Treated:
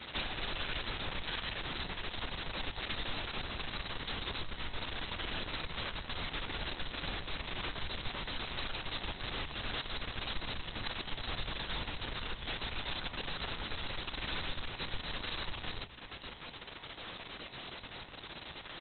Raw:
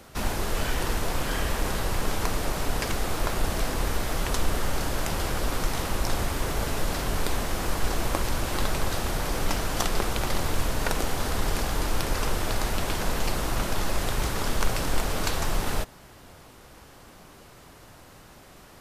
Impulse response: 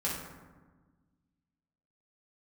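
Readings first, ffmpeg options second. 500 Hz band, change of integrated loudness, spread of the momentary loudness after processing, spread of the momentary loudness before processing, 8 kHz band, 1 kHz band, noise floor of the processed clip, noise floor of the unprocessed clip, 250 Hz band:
-14.5 dB, -10.5 dB, 7 LU, 1 LU, under -40 dB, -12.0 dB, -49 dBFS, -50 dBFS, -13.5 dB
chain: -filter_complex "[0:a]aemphasis=mode=production:type=cd,bandreject=f=60:t=h:w=6,bandreject=f=120:t=h:w=6,bandreject=f=180:t=h:w=6,adynamicequalizer=threshold=0.00282:dfrequency=630:dqfactor=5.5:tfrequency=630:tqfactor=5.5:attack=5:release=100:ratio=0.375:range=1.5:mode=cutabove:tftype=bell,acompressor=threshold=-35dB:ratio=12,crystalizer=i=5.5:c=0,aresample=11025,aeval=exprs='0.0316*(abs(mod(val(0)/0.0316+3,4)-2)-1)':c=same,aresample=44100,asplit=2[a][b];[b]adelay=17,volume=-11dB[c];[a][c]amix=inputs=2:normalize=0,asplit=2[d][e];[e]adelay=280,lowpass=f=4.2k:p=1,volume=-18dB,asplit=2[f][g];[g]adelay=280,lowpass=f=4.2k:p=1,volume=0.46,asplit=2[h][i];[i]adelay=280,lowpass=f=4.2k:p=1,volume=0.46,asplit=2[j][k];[k]adelay=280,lowpass=f=4.2k:p=1,volume=0.46[l];[d][f][h][j][l]amix=inputs=5:normalize=0,asplit=2[m][n];[1:a]atrim=start_sample=2205,asetrate=79380,aresample=44100[o];[n][o]afir=irnorm=-1:irlink=0,volume=-22dB[p];[m][p]amix=inputs=2:normalize=0" -ar 48000 -c:a libopus -b:a 6k

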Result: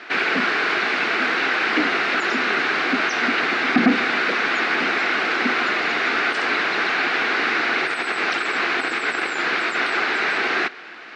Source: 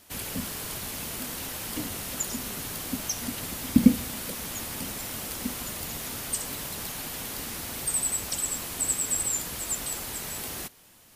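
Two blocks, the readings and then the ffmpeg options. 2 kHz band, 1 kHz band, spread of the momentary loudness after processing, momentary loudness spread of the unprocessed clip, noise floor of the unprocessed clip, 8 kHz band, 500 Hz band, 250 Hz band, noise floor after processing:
+24.0 dB, +19.5 dB, 2 LU, 8 LU, -54 dBFS, -13.5 dB, +15.0 dB, +3.5 dB, -37 dBFS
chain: -filter_complex "[0:a]asplit=2[a][b];[b]highpass=f=720:p=1,volume=30dB,asoftclip=type=tanh:threshold=-3dB[c];[a][c]amix=inputs=2:normalize=0,lowpass=f=2.4k:p=1,volume=-6dB,highpass=330,equalizer=f=360:t=q:w=4:g=5,equalizer=f=560:t=q:w=4:g=-9,equalizer=f=950:t=q:w=4:g=-8,equalizer=f=1.5k:t=q:w=4:g=6,equalizer=f=2.2k:t=q:w=4:g=3,equalizer=f=3.2k:t=q:w=4:g=-8,lowpass=f=3.7k:w=0.5412,lowpass=f=3.7k:w=1.3066,volume=2.5dB"

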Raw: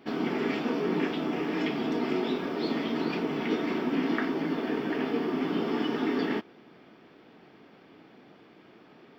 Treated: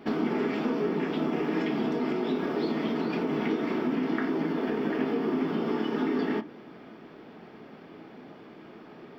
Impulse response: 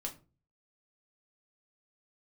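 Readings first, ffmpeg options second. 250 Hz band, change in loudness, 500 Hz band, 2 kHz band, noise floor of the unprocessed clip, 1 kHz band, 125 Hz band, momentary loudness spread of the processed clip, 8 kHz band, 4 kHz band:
+1.0 dB, +0.5 dB, +1.0 dB, -1.5 dB, -56 dBFS, 0.0 dB, +2.0 dB, 20 LU, n/a, -3.5 dB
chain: -filter_complex "[0:a]acompressor=threshold=-32dB:ratio=6,asplit=2[a][b];[1:a]atrim=start_sample=2205,lowpass=2.1k[c];[b][c]afir=irnorm=-1:irlink=0,volume=-2.5dB[d];[a][d]amix=inputs=2:normalize=0,volume=3dB"

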